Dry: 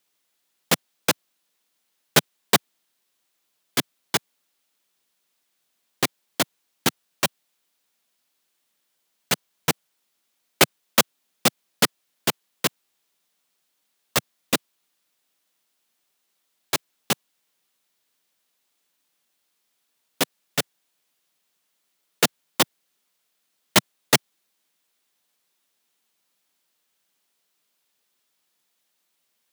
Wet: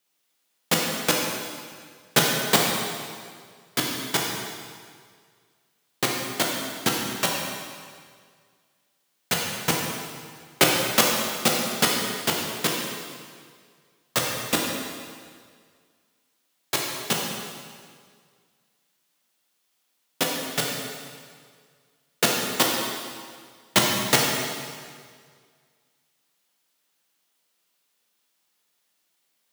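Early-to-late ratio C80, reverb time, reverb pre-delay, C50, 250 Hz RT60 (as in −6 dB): 2.5 dB, 1.9 s, 7 ms, 0.5 dB, 1.8 s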